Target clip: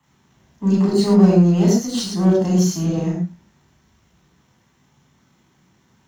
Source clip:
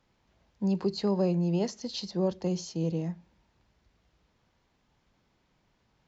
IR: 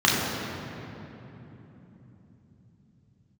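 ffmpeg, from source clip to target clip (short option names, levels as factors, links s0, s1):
-filter_complex "[0:a]aeval=exprs='if(lt(val(0),0),0.447*val(0),val(0))':c=same,aexciter=amount=5.9:drive=2.4:freq=6200[s0];[1:a]atrim=start_sample=2205,atrim=end_sample=6615,asetrate=43218,aresample=44100[s1];[s0][s1]afir=irnorm=-1:irlink=0,volume=0.562"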